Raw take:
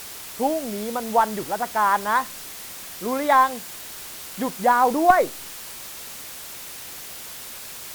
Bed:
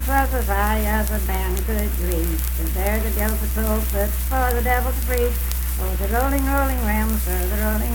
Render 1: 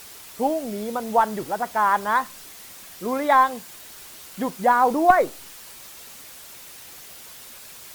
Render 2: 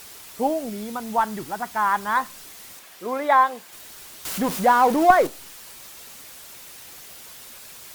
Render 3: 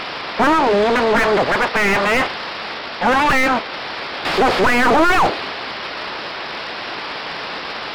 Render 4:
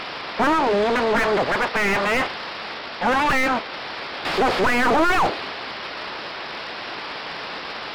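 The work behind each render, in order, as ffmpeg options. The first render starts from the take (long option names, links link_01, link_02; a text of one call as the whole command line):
ffmpeg -i in.wav -af "afftdn=noise_reduction=6:noise_floor=-38" out.wav
ffmpeg -i in.wav -filter_complex "[0:a]asettb=1/sr,asplit=3[link_01][link_02][link_03];[link_01]atrim=end=0.694[link_04];[link_02]atrim=start=0.69:end=2.17,asetpts=PTS-STARTPTS,afade=type=in:duration=0.004:curve=qsin,afade=type=out:start_time=1.476:duration=0.004:curve=qsin,equalizer=frequency=530:width_type=o:width=0.77:gain=-10[link_05];[link_03]atrim=start=2.166[link_06];[link_04][link_05]acrossfade=duration=0.004:curve1=hsin:curve2=qsin[link_07];[link_07][link_06]acrossfade=duration=0.004:curve1=qsin:curve2=hsin,asettb=1/sr,asplit=3[link_08][link_09][link_10];[link_08]atrim=end=2.794[link_11];[link_09]atrim=start=2.79:end=3.73,asetpts=PTS-STARTPTS,afade=type=in:duration=0.004:curve=qsin,afade=type=out:start_time=0.936:duration=0.004:curve=qsin,bass=frequency=250:gain=-12,treble=frequency=4000:gain=-5[link_12];[link_10]atrim=start=3.726[link_13];[link_11][link_12]acrossfade=duration=0.004:curve1=hsin:curve2=qsin[link_14];[link_14][link_13]acrossfade=duration=0.004:curve1=qsin:curve2=hsin,asettb=1/sr,asplit=3[link_15][link_16][link_17];[link_15]atrim=end=4.254[link_18];[link_16]atrim=start=4.25:end=5.27,asetpts=PTS-STARTPTS,afade=type=in:duration=0.004:curve=qsin,afade=type=out:start_time=1.016:duration=0.004:curve=qsin,aeval=exprs='val(0)+0.5*0.0501*sgn(val(0))':channel_layout=same[link_19];[link_17]atrim=start=5.266[link_20];[link_18][link_19]acrossfade=duration=0.004:curve1=hsin:curve2=qsin[link_21];[link_21][link_20]acrossfade=duration=0.004:curve1=qsin:curve2=hsin" out.wav
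ffmpeg -i in.wav -filter_complex "[0:a]aresample=11025,aeval=exprs='abs(val(0))':channel_layout=same,aresample=44100,asplit=2[link_01][link_02];[link_02]highpass=frequency=720:poles=1,volume=41dB,asoftclip=type=tanh:threshold=-3.5dB[link_03];[link_01][link_03]amix=inputs=2:normalize=0,lowpass=frequency=1000:poles=1,volume=-6dB" out.wav
ffmpeg -i in.wav -af "volume=-4.5dB" out.wav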